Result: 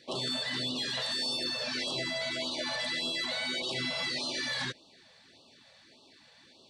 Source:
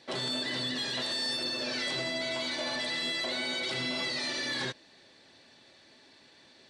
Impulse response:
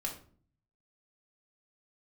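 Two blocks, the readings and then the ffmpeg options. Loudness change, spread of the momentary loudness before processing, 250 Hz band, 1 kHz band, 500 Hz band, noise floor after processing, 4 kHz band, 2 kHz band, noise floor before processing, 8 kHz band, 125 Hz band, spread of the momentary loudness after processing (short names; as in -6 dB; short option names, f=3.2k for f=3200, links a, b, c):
-0.5 dB, 2 LU, -1.5 dB, -1.5 dB, -1.5 dB, -60 dBFS, 0.0 dB, -1.0 dB, -59 dBFS, 0.0 dB, 0.0 dB, 2 LU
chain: -af "afftfilt=real='re*(1-between(b*sr/1024,290*pow(1900/290,0.5+0.5*sin(2*PI*1.7*pts/sr))/1.41,290*pow(1900/290,0.5+0.5*sin(2*PI*1.7*pts/sr))*1.41))':imag='im*(1-between(b*sr/1024,290*pow(1900/290,0.5+0.5*sin(2*PI*1.7*pts/sr))/1.41,290*pow(1900/290,0.5+0.5*sin(2*PI*1.7*pts/sr))*1.41))':win_size=1024:overlap=0.75"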